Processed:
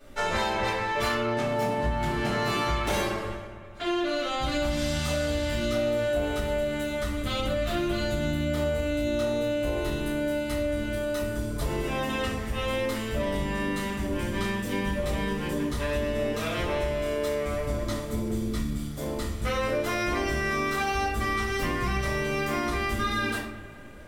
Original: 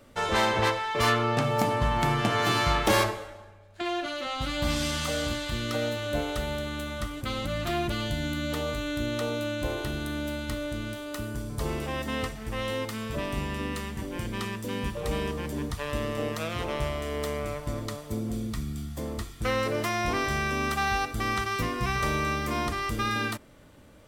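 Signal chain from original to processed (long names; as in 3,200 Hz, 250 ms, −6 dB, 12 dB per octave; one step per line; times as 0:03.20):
rectangular room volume 78 cubic metres, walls mixed, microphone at 2.4 metres
downward compressor, threshold −18 dBFS, peak gain reduction 10.5 dB
on a send: bucket-brigade delay 207 ms, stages 4,096, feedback 64%, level −17 dB
on the sum: level −6 dB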